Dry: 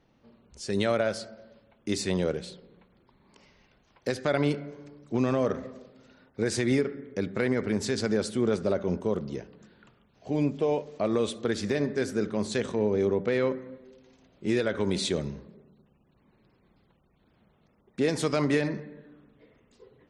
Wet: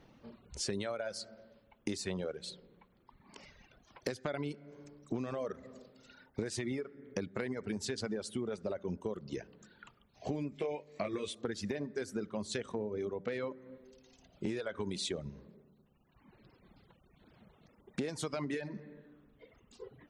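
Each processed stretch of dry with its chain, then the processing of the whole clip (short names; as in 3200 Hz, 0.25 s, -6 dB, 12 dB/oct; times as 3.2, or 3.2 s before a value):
10.5–11.35 bell 2200 Hz +12 dB 0.38 oct + doubler 20 ms -4 dB
whole clip: reverb removal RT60 1.5 s; compressor 16:1, threshold -39 dBFS; gain +5.5 dB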